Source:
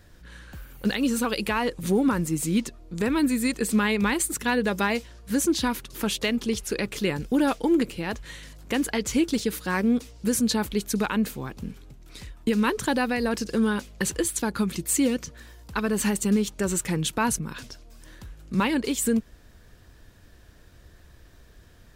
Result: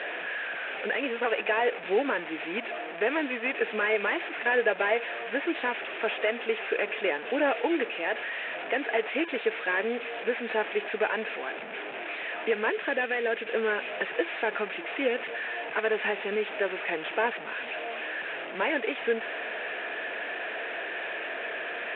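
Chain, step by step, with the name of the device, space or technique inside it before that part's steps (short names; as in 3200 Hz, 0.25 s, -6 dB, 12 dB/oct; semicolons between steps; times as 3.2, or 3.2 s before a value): digital answering machine (BPF 310–3200 Hz; delta modulation 16 kbps, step -32.5 dBFS; speaker cabinet 430–3700 Hz, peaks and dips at 440 Hz +5 dB, 670 Hz +9 dB, 1100 Hz -4 dB, 1700 Hz +7 dB, 2500 Hz +8 dB, 3600 Hz +6 dB); 12.69–13.5 dynamic EQ 860 Hz, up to -7 dB, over -39 dBFS, Q 1.3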